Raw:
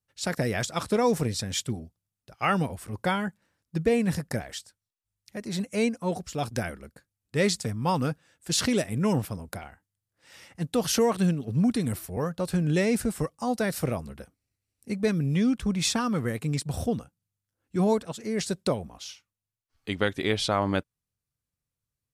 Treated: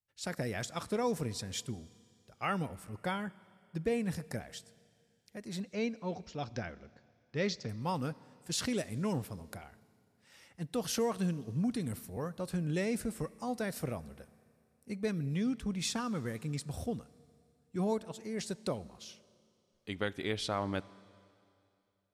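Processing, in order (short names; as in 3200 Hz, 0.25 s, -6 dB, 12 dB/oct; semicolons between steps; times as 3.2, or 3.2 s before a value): 5.6–7.69 steep low-pass 6200 Hz 48 dB/oct; reverb RT60 2.6 s, pre-delay 28 ms, DRR 20 dB; gain -9 dB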